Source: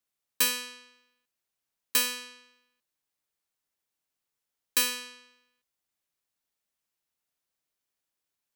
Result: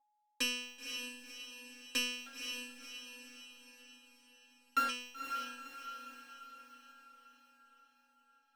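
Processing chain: 2.26–4.89 sample sorter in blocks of 32 samples; LPF 8300 Hz 24 dB/oct; high shelf 6500 Hz -7 dB; sample leveller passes 2; whine 840 Hz -66 dBFS; resonator 270 Hz, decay 0.16 s, harmonics all, mix 100%; diffused feedback echo 0.512 s, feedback 53%, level -6 dB; gain +2.5 dB

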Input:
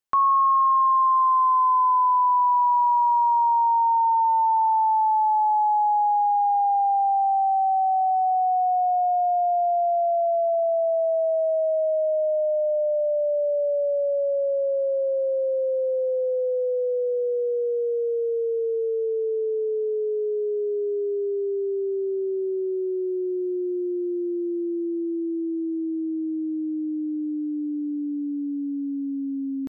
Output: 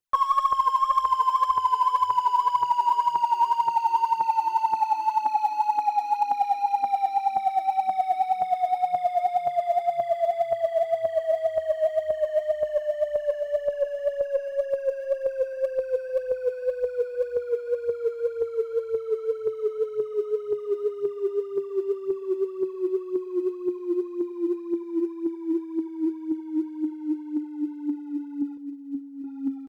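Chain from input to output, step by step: 28.57–29.24 comb 1.9 ms, depth 41%; in parallel at -7 dB: overloaded stage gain 27.5 dB; on the sum: phaser 1.9 Hz, delay 3.3 ms, feedback 73%; echo 0.836 s -22.5 dB; gain -8 dB

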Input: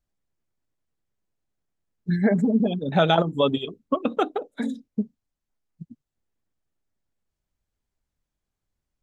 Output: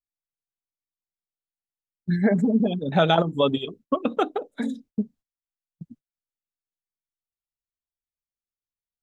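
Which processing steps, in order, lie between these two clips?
gate -48 dBFS, range -23 dB

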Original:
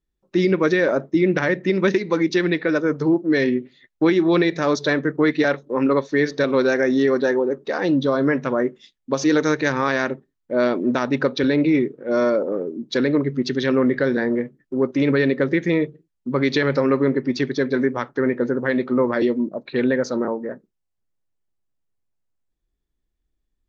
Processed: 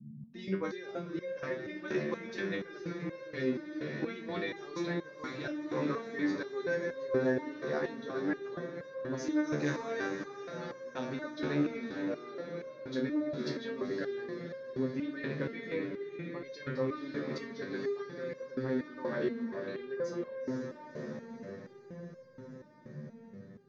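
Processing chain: band noise 120–230 Hz -34 dBFS; diffused feedback echo 0.493 s, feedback 70%, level -6 dB; stepped resonator 4.2 Hz 74–530 Hz; gain -6.5 dB

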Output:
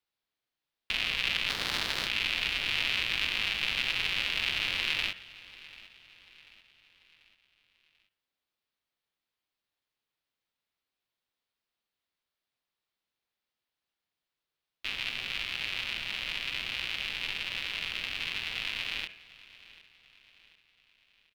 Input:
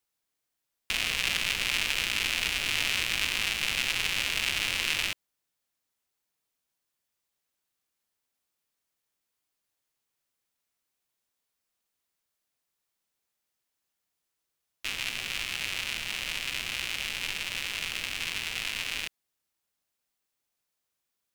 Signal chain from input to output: 1.48–2.06 spectral limiter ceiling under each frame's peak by 16 dB; resonant high shelf 5300 Hz -10 dB, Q 1.5; de-hum 92.95 Hz, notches 36; on a send: feedback echo 0.74 s, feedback 47%, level -20 dB; on the sum: ending taper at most 280 dB/s; gain -2.5 dB

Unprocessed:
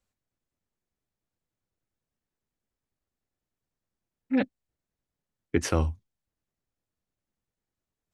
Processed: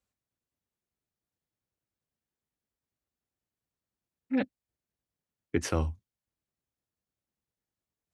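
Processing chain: HPF 46 Hz; gain -3.5 dB

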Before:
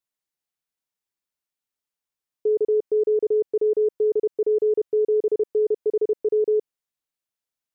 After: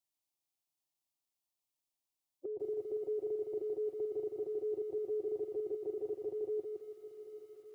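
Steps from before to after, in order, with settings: bin magnitudes rounded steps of 30 dB; on a send: swung echo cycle 1.312 s, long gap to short 1.5:1, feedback 36%, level -24 dB; on the sum: compressor 2:1, threshold -34 dBFS, peak gain reduction 8.5 dB; 2.82–3.67 bell 600 Hz +3 dB 0.51 oct; limiter -26 dBFS, peak gain reduction 4 dB; fixed phaser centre 310 Hz, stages 8; lo-fi delay 0.164 s, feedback 35%, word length 12-bit, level -4.5 dB

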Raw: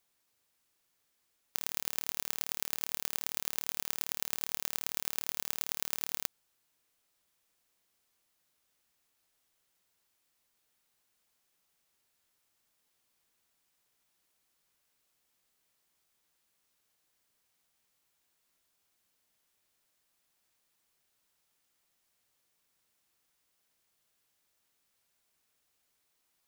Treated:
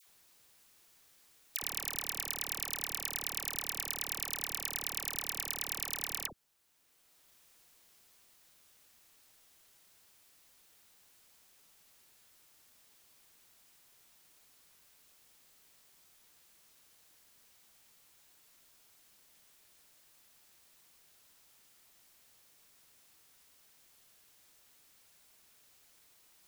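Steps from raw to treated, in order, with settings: dispersion lows, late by 71 ms, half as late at 1100 Hz; three-band squash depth 40%; gain +6 dB

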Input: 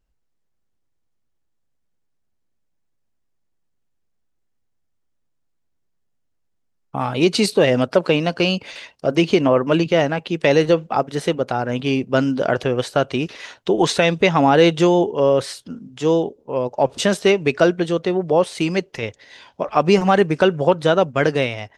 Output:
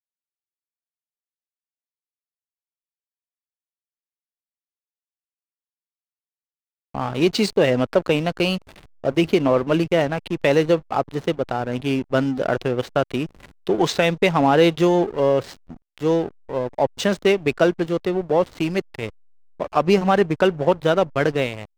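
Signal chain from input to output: LPF 8500 Hz 24 dB/oct; backlash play -24.5 dBFS; gain -2 dB

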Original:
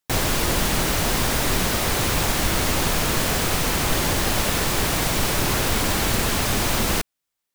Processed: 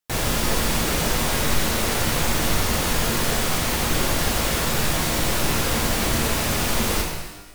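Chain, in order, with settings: vibrato 5 Hz 5.8 cents; shimmer reverb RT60 1 s, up +12 st, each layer -8 dB, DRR 0 dB; gain -4 dB

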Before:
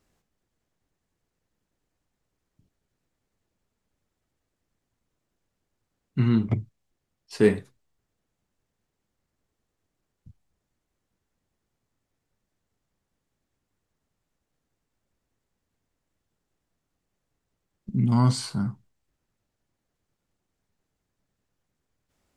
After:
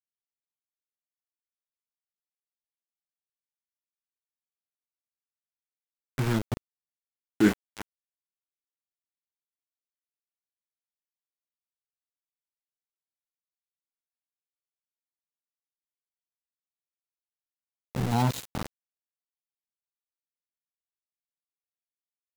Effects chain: low shelf 160 Hz -9.5 dB; formant shift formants -3 st; echo 0.346 s -14.5 dB; sample gate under -26 dBFS

